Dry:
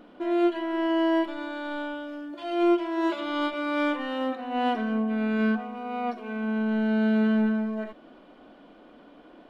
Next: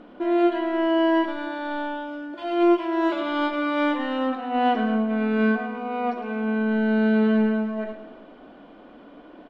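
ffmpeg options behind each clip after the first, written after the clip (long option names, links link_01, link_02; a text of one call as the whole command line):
ffmpeg -i in.wav -filter_complex "[0:a]aemphasis=mode=reproduction:type=50fm,asplit=2[link_01][link_02];[link_02]aecho=0:1:108|216|324|432|540|648:0.316|0.171|0.0922|0.0498|0.0269|0.0145[link_03];[link_01][link_03]amix=inputs=2:normalize=0,volume=4dB" out.wav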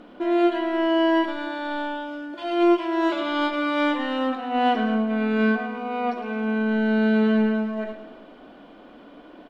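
ffmpeg -i in.wav -af "highshelf=frequency=3600:gain=8" out.wav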